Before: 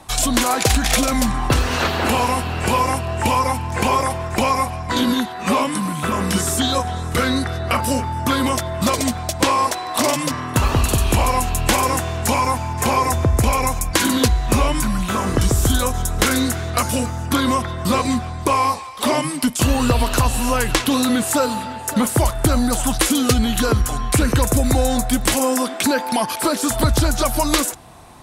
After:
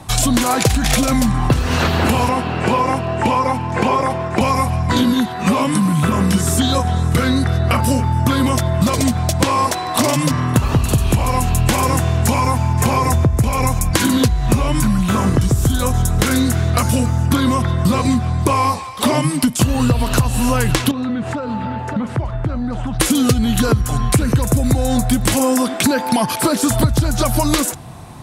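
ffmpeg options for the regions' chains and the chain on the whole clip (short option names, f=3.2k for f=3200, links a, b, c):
-filter_complex "[0:a]asettb=1/sr,asplit=3[a][b][c];[a]atrim=end=2.294[d];[b]atrim=start=2.29:end=4.41,asetpts=PTS-STARTPTS,afade=t=in:d=0.004:c=qsin,afade=t=out:st=2.116:d=0.004:c=qsin,highpass=330,aemphasis=mode=reproduction:type=bsi[e];[c]atrim=start=4.406[f];[d][e]acrossfade=d=0.004:c1=hsin:c2=qsin[g];[g][f]acrossfade=d=0.004:c1=qsin:c2=hsin,asettb=1/sr,asplit=3[h][i][j];[h]atrim=end=20.914[k];[i]atrim=start=20.91:end=23,asetpts=PTS-STARTPTS,afade=t=in:d=0.004:c=qsin,afade=t=out:st=2.086:d=0.004:c=qsin,lowpass=2.4k,acompressor=threshold=-25dB:ratio=10:attack=3.2:release=140:knee=1:detection=peak[l];[j]atrim=start=22.996[m];[k][l]acrossfade=d=0.004:c1=hsin:c2=qsin[n];[n][m]acrossfade=d=0.004:c1=qsin:c2=hsin,equalizer=f=130:t=o:w=1.6:g=11,acompressor=threshold=-15dB:ratio=6,volume=3.5dB"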